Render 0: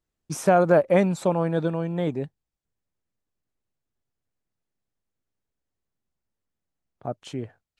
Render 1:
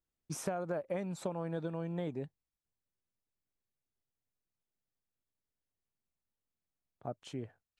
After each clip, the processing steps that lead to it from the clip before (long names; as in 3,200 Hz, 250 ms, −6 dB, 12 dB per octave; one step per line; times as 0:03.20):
downward compressor 12 to 1, threshold −24 dBFS, peak gain reduction 11.5 dB
level −8.5 dB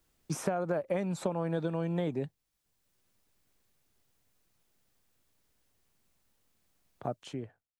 fade-out on the ending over 0.81 s
multiband upward and downward compressor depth 40%
level +5.5 dB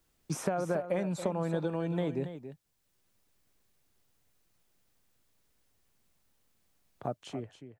single-tap delay 279 ms −11 dB